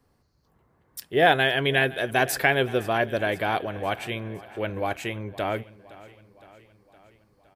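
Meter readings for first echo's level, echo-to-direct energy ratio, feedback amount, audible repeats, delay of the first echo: -19.5 dB, -17.5 dB, 60%, 4, 0.514 s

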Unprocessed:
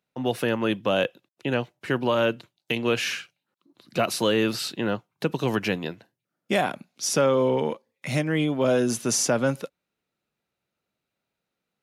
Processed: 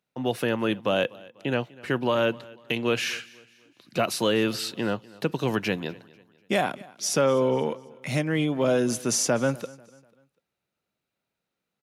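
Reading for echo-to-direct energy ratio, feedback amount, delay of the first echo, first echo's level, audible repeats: -22.0 dB, 40%, 0.246 s, -22.5 dB, 2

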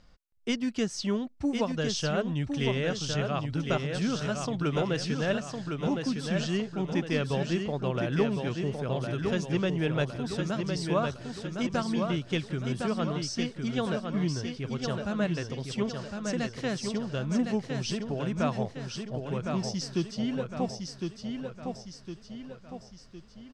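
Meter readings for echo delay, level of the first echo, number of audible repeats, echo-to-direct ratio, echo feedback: 1.059 s, -5.0 dB, 5, -4.0 dB, 47%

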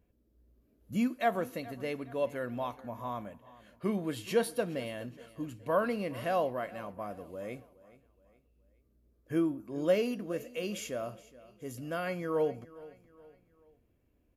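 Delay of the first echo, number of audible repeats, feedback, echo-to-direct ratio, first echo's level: 0.42 s, 3, 42%, -18.5 dB, -19.5 dB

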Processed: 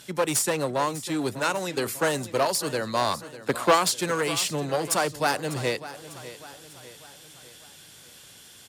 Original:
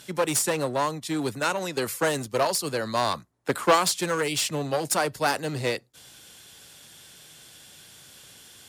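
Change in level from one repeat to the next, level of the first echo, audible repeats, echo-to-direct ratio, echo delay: -6.5 dB, -15.0 dB, 4, -14.0 dB, 0.598 s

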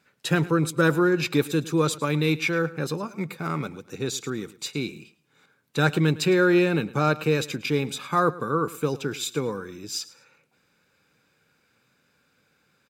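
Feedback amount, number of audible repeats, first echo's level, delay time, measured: 27%, 2, -18.5 dB, 0.108 s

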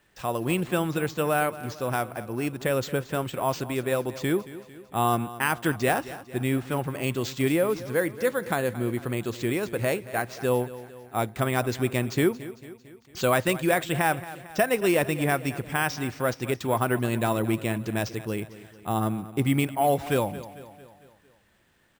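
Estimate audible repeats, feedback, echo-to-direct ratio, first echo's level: 4, 54%, -14.5 dB, -16.0 dB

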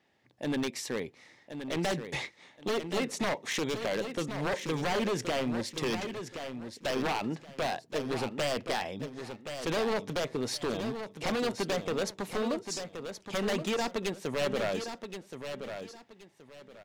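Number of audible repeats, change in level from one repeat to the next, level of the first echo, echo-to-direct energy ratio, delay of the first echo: 3, -12.0 dB, -8.5 dB, -8.0 dB, 1.074 s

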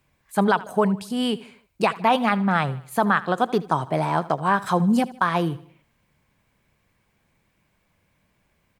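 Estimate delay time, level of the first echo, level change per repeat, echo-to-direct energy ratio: 77 ms, -18.5 dB, -7.0 dB, -17.5 dB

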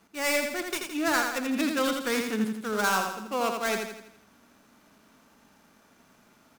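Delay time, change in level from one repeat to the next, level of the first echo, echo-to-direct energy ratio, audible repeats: 83 ms, -6.5 dB, -5.0 dB, -4.0 dB, 5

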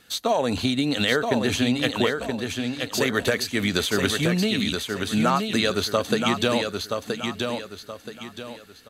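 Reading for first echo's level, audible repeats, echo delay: -5.0 dB, 4, 0.975 s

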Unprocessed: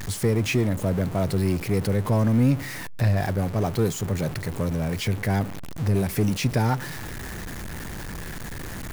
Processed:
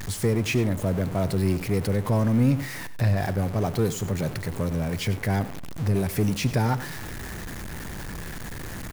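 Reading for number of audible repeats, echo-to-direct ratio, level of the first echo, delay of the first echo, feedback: 1, -15.0 dB, -15.0 dB, 95 ms, no steady repeat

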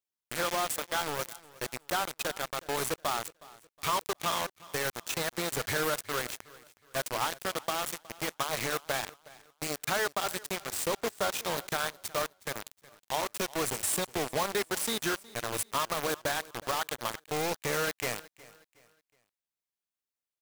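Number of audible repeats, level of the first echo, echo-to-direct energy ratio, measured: 2, -21.0 dB, -20.5 dB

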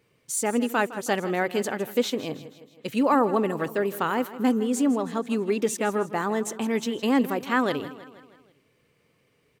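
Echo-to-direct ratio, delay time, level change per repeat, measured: -14.0 dB, 0.16 s, -5.5 dB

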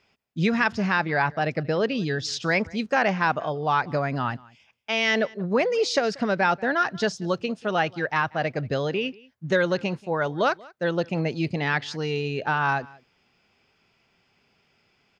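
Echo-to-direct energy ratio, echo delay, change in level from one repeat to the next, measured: -23.5 dB, 0.185 s, no steady repeat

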